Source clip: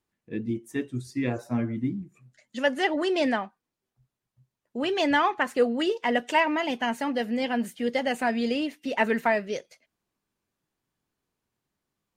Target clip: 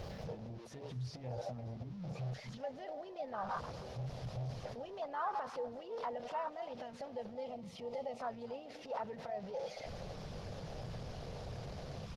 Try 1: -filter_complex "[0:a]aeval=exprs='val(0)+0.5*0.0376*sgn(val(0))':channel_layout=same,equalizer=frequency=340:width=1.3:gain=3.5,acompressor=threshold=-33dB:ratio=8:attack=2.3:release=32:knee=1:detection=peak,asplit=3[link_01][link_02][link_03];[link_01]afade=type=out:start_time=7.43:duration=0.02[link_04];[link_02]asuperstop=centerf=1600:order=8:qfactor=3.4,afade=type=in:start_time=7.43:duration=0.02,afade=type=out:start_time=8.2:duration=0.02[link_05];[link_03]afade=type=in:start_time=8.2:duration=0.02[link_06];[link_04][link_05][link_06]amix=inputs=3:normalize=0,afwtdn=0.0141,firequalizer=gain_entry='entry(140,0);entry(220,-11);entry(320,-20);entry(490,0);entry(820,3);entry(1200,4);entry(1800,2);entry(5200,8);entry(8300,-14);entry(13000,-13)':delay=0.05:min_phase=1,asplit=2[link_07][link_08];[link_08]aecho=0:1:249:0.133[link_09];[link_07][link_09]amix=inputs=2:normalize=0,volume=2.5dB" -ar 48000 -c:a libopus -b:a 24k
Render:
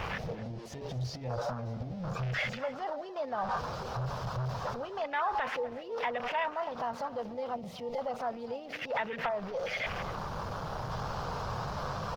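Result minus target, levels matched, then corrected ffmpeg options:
downward compressor: peak gain reduction −5.5 dB
-filter_complex "[0:a]aeval=exprs='val(0)+0.5*0.0376*sgn(val(0))':channel_layout=same,equalizer=frequency=340:width=1.3:gain=3.5,acompressor=threshold=-39.5dB:ratio=8:attack=2.3:release=32:knee=1:detection=peak,asplit=3[link_01][link_02][link_03];[link_01]afade=type=out:start_time=7.43:duration=0.02[link_04];[link_02]asuperstop=centerf=1600:order=8:qfactor=3.4,afade=type=in:start_time=7.43:duration=0.02,afade=type=out:start_time=8.2:duration=0.02[link_05];[link_03]afade=type=in:start_time=8.2:duration=0.02[link_06];[link_04][link_05][link_06]amix=inputs=3:normalize=0,afwtdn=0.0141,firequalizer=gain_entry='entry(140,0);entry(220,-11);entry(320,-20);entry(490,0);entry(820,3);entry(1200,4);entry(1800,2);entry(5200,8);entry(8300,-14);entry(13000,-13)':delay=0.05:min_phase=1,asplit=2[link_07][link_08];[link_08]aecho=0:1:249:0.133[link_09];[link_07][link_09]amix=inputs=2:normalize=0,volume=2.5dB" -ar 48000 -c:a libopus -b:a 24k

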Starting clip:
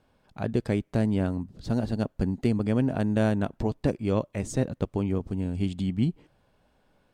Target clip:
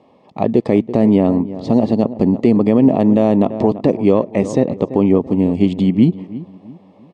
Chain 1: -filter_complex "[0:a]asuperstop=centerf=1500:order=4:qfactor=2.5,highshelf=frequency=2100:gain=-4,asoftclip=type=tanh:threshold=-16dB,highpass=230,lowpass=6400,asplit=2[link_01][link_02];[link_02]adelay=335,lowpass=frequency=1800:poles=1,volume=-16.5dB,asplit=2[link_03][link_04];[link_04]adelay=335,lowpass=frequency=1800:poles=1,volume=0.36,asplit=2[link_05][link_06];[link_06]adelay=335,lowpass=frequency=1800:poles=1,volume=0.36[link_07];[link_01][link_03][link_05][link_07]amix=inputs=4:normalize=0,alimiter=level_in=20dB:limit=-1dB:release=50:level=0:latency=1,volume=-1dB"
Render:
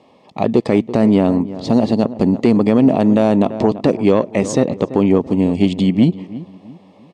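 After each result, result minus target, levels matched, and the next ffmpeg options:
soft clipping: distortion +13 dB; 4,000 Hz band +6.5 dB
-filter_complex "[0:a]asuperstop=centerf=1500:order=4:qfactor=2.5,highshelf=frequency=2100:gain=-4,asoftclip=type=tanh:threshold=-8.5dB,highpass=230,lowpass=6400,asplit=2[link_01][link_02];[link_02]adelay=335,lowpass=frequency=1800:poles=1,volume=-16.5dB,asplit=2[link_03][link_04];[link_04]adelay=335,lowpass=frequency=1800:poles=1,volume=0.36,asplit=2[link_05][link_06];[link_06]adelay=335,lowpass=frequency=1800:poles=1,volume=0.36[link_07];[link_01][link_03][link_05][link_07]amix=inputs=4:normalize=0,alimiter=level_in=20dB:limit=-1dB:release=50:level=0:latency=1,volume=-1dB"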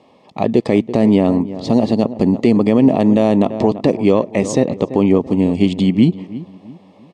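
4,000 Hz band +6.5 dB
-filter_complex "[0:a]asuperstop=centerf=1500:order=4:qfactor=2.5,highshelf=frequency=2100:gain=-13.5,asoftclip=type=tanh:threshold=-8.5dB,highpass=230,lowpass=6400,asplit=2[link_01][link_02];[link_02]adelay=335,lowpass=frequency=1800:poles=1,volume=-16.5dB,asplit=2[link_03][link_04];[link_04]adelay=335,lowpass=frequency=1800:poles=1,volume=0.36,asplit=2[link_05][link_06];[link_06]adelay=335,lowpass=frequency=1800:poles=1,volume=0.36[link_07];[link_01][link_03][link_05][link_07]amix=inputs=4:normalize=0,alimiter=level_in=20dB:limit=-1dB:release=50:level=0:latency=1,volume=-1dB"

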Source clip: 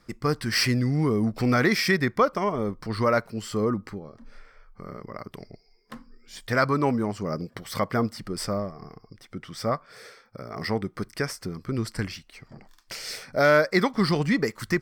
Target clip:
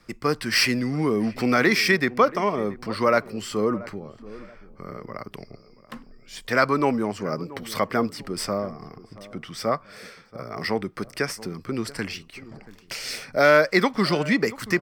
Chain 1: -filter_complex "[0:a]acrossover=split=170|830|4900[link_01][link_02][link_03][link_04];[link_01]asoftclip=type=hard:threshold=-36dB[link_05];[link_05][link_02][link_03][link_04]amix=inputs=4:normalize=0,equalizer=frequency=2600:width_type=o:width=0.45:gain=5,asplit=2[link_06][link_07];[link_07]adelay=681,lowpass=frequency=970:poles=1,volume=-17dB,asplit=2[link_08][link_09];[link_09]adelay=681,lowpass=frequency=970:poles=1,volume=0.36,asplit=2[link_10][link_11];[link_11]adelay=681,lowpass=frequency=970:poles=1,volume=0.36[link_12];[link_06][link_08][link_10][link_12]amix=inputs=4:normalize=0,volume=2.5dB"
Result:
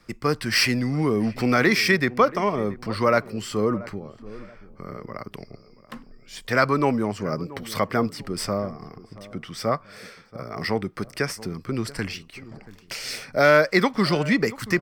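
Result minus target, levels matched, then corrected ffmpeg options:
hard clipping: distortion −5 dB
-filter_complex "[0:a]acrossover=split=170|830|4900[link_01][link_02][link_03][link_04];[link_01]asoftclip=type=hard:threshold=-46dB[link_05];[link_05][link_02][link_03][link_04]amix=inputs=4:normalize=0,equalizer=frequency=2600:width_type=o:width=0.45:gain=5,asplit=2[link_06][link_07];[link_07]adelay=681,lowpass=frequency=970:poles=1,volume=-17dB,asplit=2[link_08][link_09];[link_09]adelay=681,lowpass=frequency=970:poles=1,volume=0.36,asplit=2[link_10][link_11];[link_11]adelay=681,lowpass=frequency=970:poles=1,volume=0.36[link_12];[link_06][link_08][link_10][link_12]amix=inputs=4:normalize=0,volume=2.5dB"

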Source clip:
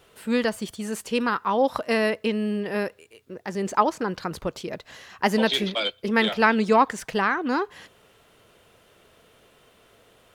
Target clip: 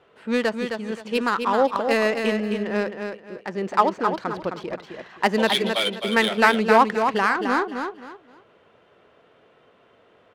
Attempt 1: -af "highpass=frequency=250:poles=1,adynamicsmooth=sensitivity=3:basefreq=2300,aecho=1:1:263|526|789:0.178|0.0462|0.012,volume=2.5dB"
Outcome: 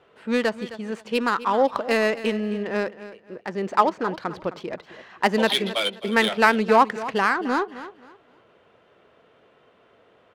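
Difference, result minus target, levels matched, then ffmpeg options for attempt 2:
echo-to-direct −9 dB
-af "highpass=frequency=250:poles=1,adynamicsmooth=sensitivity=3:basefreq=2300,aecho=1:1:263|526|789:0.501|0.13|0.0339,volume=2.5dB"

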